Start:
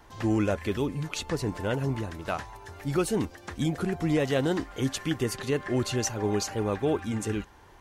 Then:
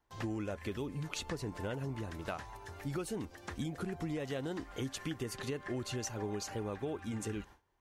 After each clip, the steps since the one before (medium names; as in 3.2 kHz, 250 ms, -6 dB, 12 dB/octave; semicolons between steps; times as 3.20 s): gate with hold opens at -41 dBFS; compression, threshold -31 dBFS, peak gain reduction 10 dB; trim -4 dB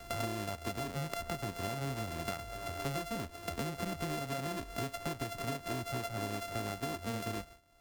sorted samples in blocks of 64 samples; three bands compressed up and down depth 100%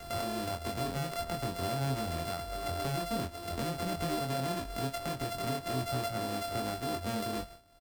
peak limiter -28 dBFS, peak gain reduction 7.5 dB; doubling 23 ms -3.5 dB; trim +3 dB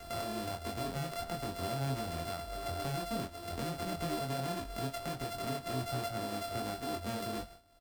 flange 1.3 Hz, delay 2.6 ms, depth 6.2 ms, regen -73%; trim +1.5 dB